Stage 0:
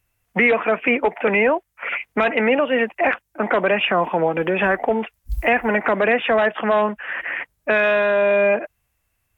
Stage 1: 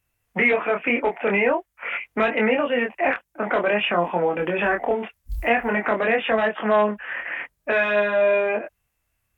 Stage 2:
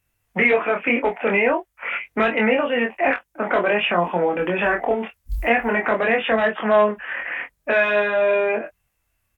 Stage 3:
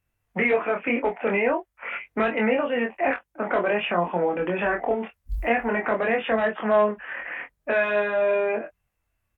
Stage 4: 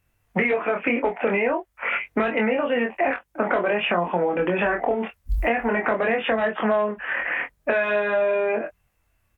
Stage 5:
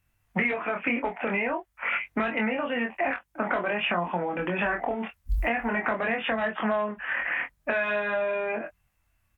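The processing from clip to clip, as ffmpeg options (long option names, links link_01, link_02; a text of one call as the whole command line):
ffmpeg -i in.wav -af "flanger=delay=22.5:depth=3.6:speed=0.47" out.wav
ffmpeg -i in.wav -filter_complex "[0:a]asplit=2[link_01][link_02];[link_02]adelay=22,volume=-9dB[link_03];[link_01][link_03]amix=inputs=2:normalize=0,volume=1.5dB" out.wav
ffmpeg -i in.wav -af "highshelf=frequency=2600:gain=-8,volume=-3dB" out.wav
ffmpeg -i in.wav -af "acompressor=threshold=-27dB:ratio=6,volume=8dB" out.wav
ffmpeg -i in.wav -af "equalizer=frequency=450:width_type=o:width=0.94:gain=-7.5,volume=-2.5dB" out.wav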